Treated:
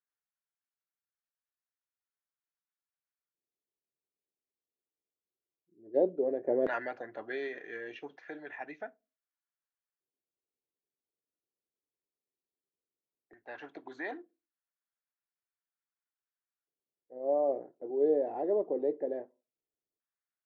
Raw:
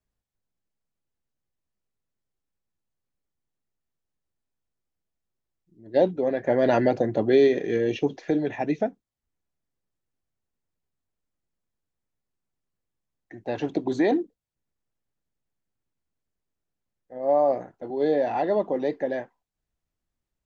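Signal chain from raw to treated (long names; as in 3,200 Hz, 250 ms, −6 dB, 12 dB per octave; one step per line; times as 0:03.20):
auto-filter band-pass square 0.15 Hz 420–1,500 Hz
on a send: convolution reverb RT60 0.30 s, pre-delay 3 ms, DRR 18.5 dB
on the sum: level −2.5 dB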